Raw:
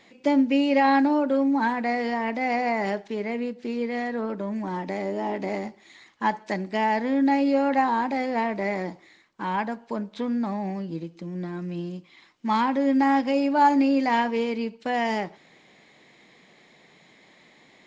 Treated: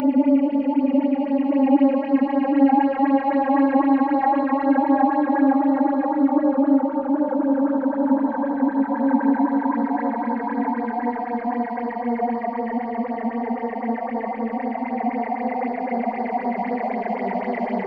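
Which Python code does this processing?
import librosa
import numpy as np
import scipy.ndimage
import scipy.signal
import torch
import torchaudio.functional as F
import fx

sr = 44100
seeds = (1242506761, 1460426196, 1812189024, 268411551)

y = fx.filter_sweep_lowpass(x, sr, from_hz=1400.0, to_hz=5800.0, start_s=2.5, end_s=3.37, q=0.76)
y = fx.paulstretch(y, sr, seeds[0], factor=7.2, window_s=1.0, from_s=0.32)
y = fx.phaser_stages(y, sr, stages=6, low_hz=100.0, high_hz=2700.0, hz=3.9, feedback_pct=25)
y = y * 10.0 ** (3.5 / 20.0)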